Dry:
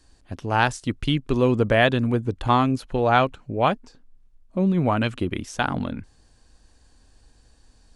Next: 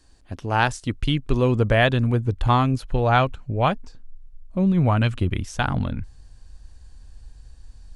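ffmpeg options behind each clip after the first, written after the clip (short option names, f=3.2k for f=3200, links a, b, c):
-af "asubboost=boost=4.5:cutoff=130"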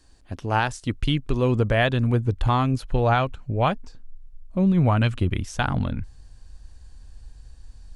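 -af "alimiter=limit=-9.5dB:level=0:latency=1:release=286"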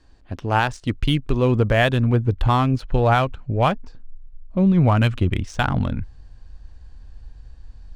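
-af "adynamicsmooth=sensitivity=7:basefreq=4.1k,volume=3dB"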